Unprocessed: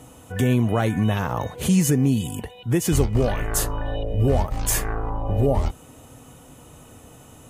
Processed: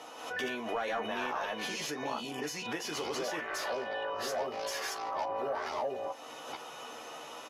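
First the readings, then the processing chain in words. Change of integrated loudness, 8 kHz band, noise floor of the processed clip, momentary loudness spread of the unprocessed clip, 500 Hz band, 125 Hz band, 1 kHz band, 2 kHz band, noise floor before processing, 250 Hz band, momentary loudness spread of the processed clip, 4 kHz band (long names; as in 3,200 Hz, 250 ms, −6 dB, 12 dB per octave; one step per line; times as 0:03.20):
−13.5 dB, −14.0 dB, −47 dBFS, 9 LU, −9.0 dB, −33.5 dB, −4.0 dB, −2.5 dB, −48 dBFS, −20.0 dB, 9 LU, −3.0 dB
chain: delay that plays each chunk backwards 437 ms, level 0 dB
high-pass filter 480 Hz 12 dB per octave
downward compressor 2.5 to 1, threshold −40 dBFS, peak gain reduction 14.5 dB
high shelf with overshoot 6,900 Hz −10 dB, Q 3
ambience of single reflections 13 ms −5 dB, 44 ms −16.5 dB
mid-hump overdrive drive 10 dB, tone 2,200 Hz, clips at −22.5 dBFS
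parametric band 11,000 Hz +12 dB 0.57 octaves
background raised ahead of every attack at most 64 dB per second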